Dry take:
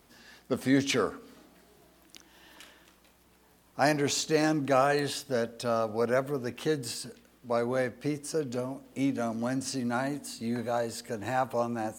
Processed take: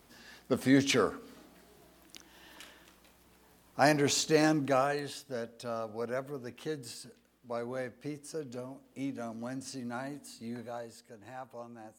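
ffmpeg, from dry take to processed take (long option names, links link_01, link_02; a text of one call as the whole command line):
ffmpeg -i in.wav -af "afade=type=out:start_time=4.46:duration=0.56:silence=0.375837,afade=type=out:start_time=10.49:duration=0.57:silence=0.421697" out.wav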